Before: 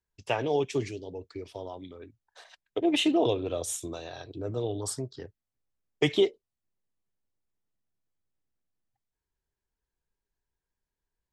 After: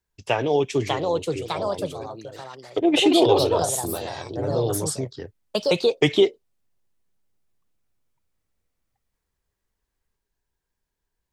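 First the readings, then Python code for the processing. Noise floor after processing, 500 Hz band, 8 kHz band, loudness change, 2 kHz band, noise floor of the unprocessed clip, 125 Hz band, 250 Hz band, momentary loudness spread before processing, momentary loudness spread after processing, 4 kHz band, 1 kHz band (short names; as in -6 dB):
-82 dBFS, +8.5 dB, +7.5 dB, +7.0 dB, +7.0 dB, under -85 dBFS, +8.0 dB, +6.5 dB, 17 LU, 16 LU, +8.5 dB, +10.5 dB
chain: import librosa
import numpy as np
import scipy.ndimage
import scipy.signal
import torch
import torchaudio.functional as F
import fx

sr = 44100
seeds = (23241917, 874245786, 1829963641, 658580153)

y = fx.echo_pitch(x, sr, ms=645, semitones=3, count=2, db_per_echo=-3.0)
y = F.gain(torch.from_numpy(y), 6.0).numpy()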